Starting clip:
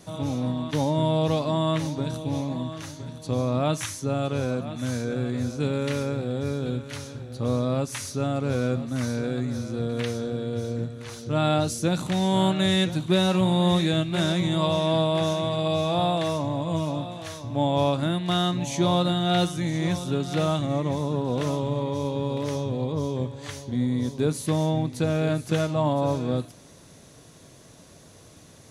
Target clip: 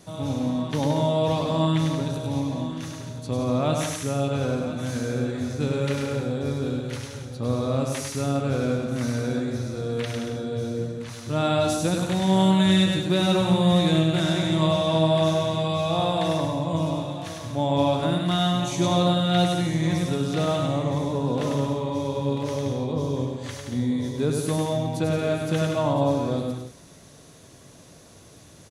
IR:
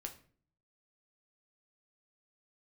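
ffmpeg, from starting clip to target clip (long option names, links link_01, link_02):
-af "aecho=1:1:100|175|231.2|273.4|305.1:0.631|0.398|0.251|0.158|0.1,volume=-1dB"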